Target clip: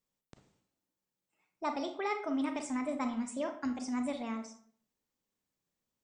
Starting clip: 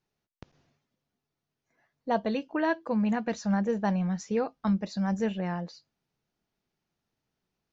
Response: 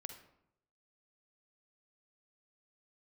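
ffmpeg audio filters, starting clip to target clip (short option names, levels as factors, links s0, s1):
-filter_complex "[0:a]aemphasis=mode=production:type=50kf,asetrate=56448,aresample=44100[s0];[1:a]atrim=start_sample=2205,asetrate=61740,aresample=44100[s1];[s0][s1]afir=irnorm=-1:irlink=0"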